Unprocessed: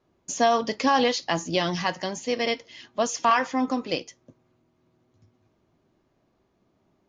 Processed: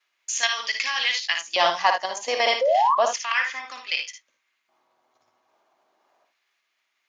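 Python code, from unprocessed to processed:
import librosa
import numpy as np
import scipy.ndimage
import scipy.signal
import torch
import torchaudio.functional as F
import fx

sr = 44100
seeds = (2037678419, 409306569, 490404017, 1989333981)

p1 = fx.high_shelf(x, sr, hz=6400.0, db=-11.5, at=(2.86, 4.0))
p2 = fx.level_steps(p1, sr, step_db=9)
p3 = fx.filter_lfo_highpass(p2, sr, shape='square', hz=0.32, low_hz=790.0, high_hz=2100.0, q=1.9)
p4 = fx.transient(p3, sr, attack_db=-1, sustain_db=-7, at=(1.1, 2.22), fade=0.02)
p5 = fx.spec_paint(p4, sr, seeds[0], shape='rise', start_s=2.61, length_s=0.34, low_hz=500.0, high_hz=1200.0, level_db=-27.0)
p6 = p5 + fx.room_early_taps(p5, sr, ms=(57, 75), db=(-6.5, -11.0), dry=0)
y = p6 * librosa.db_to_amplitude(7.5)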